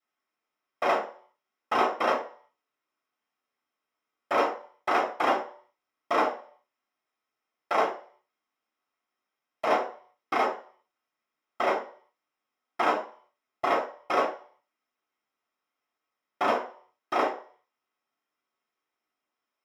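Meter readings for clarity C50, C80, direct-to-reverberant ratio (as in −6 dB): 9.0 dB, 14.0 dB, −14.0 dB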